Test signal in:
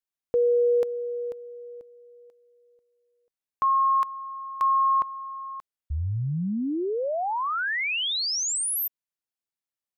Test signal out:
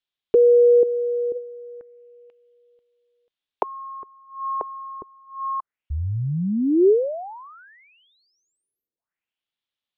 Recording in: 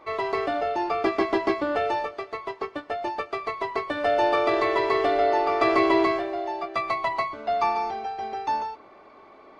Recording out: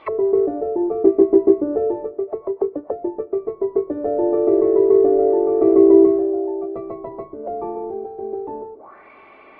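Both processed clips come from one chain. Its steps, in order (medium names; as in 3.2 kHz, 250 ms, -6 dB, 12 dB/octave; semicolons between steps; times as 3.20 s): touch-sensitive low-pass 400–3500 Hz down, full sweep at -29.5 dBFS; trim +2 dB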